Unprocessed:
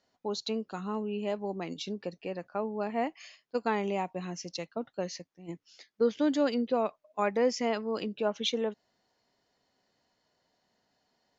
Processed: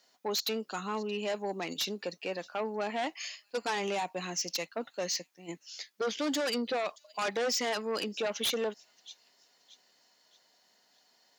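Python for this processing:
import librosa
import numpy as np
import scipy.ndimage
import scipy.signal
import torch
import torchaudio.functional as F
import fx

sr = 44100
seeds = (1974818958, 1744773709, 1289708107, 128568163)

p1 = fx.tilt_eq(x, sr, slope=3.0)
p2 = fx.echo_wet_highpass(p1, sr, ms=625, feedback_pct=36, hz=3900.0, wet_db=-24.0)
p3 = fx.fold_sine(p2, sr, drive_db=17, ceiling_db=-12.0)
p4 = p2 + F.gain(torch.from_numpy(p3), -11.0).numpy()
p5 = scipy.signal.sosfilt(scipy.signal.butter(2, 150.0, 'highpass', fs=sr, output='sos'), p4)
y = F.gain(torch.from_numpy(p5), -7.5).numpy()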